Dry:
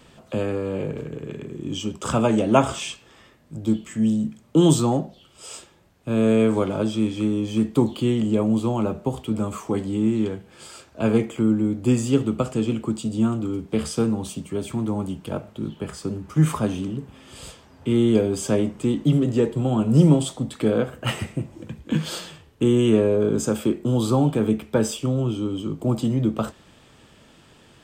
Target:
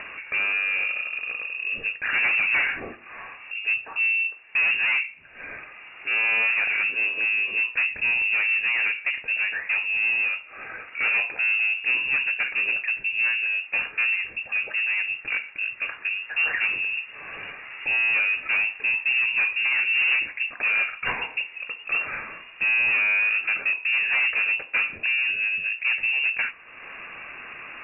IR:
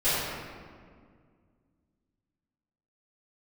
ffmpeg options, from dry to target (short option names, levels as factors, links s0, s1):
-filter_complex "[0:a]asplit=2[s0][s1];[s1]highpass=f=720:p=1,volume=6.31,asoftclip=type=tanh:threshold=0.596[s2];[s0][s2]amix=inputs=2:normalize=0,lowpass=f=1500:p=1,volume=0.501,acompressor=mode=upward:threshold=0.0398:ratio=2.5,asoftclip=type=tanh:threshold=0.112,lowpass=f=2500:t=q:w=0.5098,lowpass=f=2500:t=q:w=0.6013,lowpass=f=2500:t=q:w=0.9,lowpass=f=2500:t=q:w=2.563,afreqshift=-2900"